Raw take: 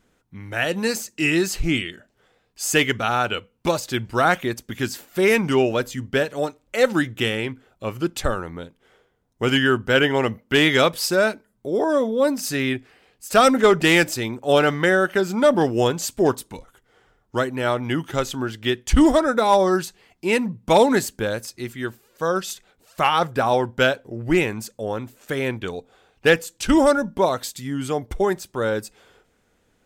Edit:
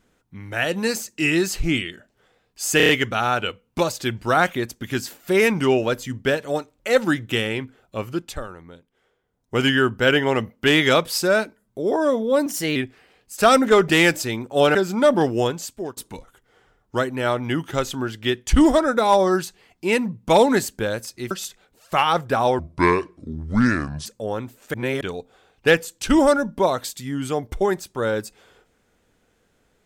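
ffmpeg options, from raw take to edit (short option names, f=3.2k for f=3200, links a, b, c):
-filter_complex "[0:a]asplit=16[a][b][c][d][e][f][g][h][i][j][k][l][m][n][o][p];[a]atrim=end=2.802[q];[b]atrim=start=2.768:end=2.802[r];[c]atrim=start=2.768:end=2.802[s];[d]atrim=start=2.768:end=2.802[t];[e]atrim=start=2.768:end=8.29,asetpts=PTS-STARTPTS,afade=t=out:st=5.102:d=0.42:silence=0.334965[u];[f]atrim=start=8.29:end=9.02,asetpts=PTS-STARTPTS,volume=-9.5dB[v];[g]atrim=start=9.02:end=12.344,asetpts=PTS-STARTPTS,afade=t=in:d=0.42:silence=0.334965[w];[h]atrim=start=12.34:end=12.68,asetpts=PTS-STARTPTS,asetrate=50274,aresample=44100[x];[i]atrim=start=12.676:end=14.672[y];[j]atrim=start=15.148:end=16.37,asetpts=PTS-STARTPTS,afade=t=out:st=0.542:d=0.68:silence=0.0891251[z];[k]atrim=start=16.37:end=21.712,asetpts=PTS-STARTPTS,afade=t=in:d=0.004:c=hsin:silence=0.0891251[aa];[l]atrim=start=22.368:end=23.654[ab];[m]atrim=start=23.65:end=24.65,asetpts=PTS-STARTPTS,asetrate=29988,aresample=44100[ac];[n]atrim=start=24.646:end=25.332[ad];[o]atrim=start=25.328:end=25.602,asetpts=PTS-STARTPTS,areverse[ae];[p]atrim=start=25.598[af];[q][r]acrossfade=d=0.004:c1=hsin:c2=hsin[ag];[ag][s]acrossfade=d=0.004:c1=hsin:c2=hsin[ah];[ah][t]acrossfade=d=0.004:c1=hsin:c2=hsin[ai];[u][v][w]concat=n=3:v=0:a=1[aj];[ai][aj]acrossfade=d=0.004:c1=hsin:c2=hsin[ak];[ak][x]acrossfade=d=0.004:c1=hsin:c2=hsin[al];[al][y]acrossfade=d=0.004:c1=hsin:c2=hsin[am];[z][aa]concat=n=2:v=0:a=1[an];[am][an]acrossfade=d=0.004:c1=hsin:c2=hsin[ao];[ao][ab]acrossfade=d=0.004:c1=hsin:c2=hsin[ap];[ap][ac]acrossfade=d=0.004:c1=hsin:c2=hsin[aq];[aq][ad]acrossfade=d=0.004:c1=hsin:c2=hsin[ar];[ar][ae]acrossfade=d=0.004:c1=hsin:c2=hsin[as];[as][af]acrossfade=d=0.004:c1=hsin:c2=hsin"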